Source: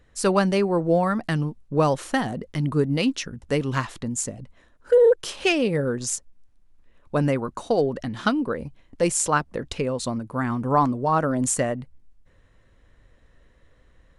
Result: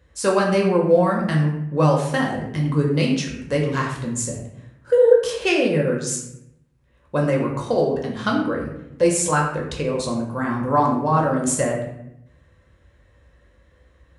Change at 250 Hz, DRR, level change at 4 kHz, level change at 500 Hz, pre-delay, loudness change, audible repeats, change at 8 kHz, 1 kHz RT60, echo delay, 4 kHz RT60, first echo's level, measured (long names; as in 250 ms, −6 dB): +2.5 dB, −1.5 dB, +1.5 dB, +3.5 dB, 4 ms, +3.0 dB, no echo audible, +1.5 dB, 0.75 s, no echo audible, 0.50 s, no echo audible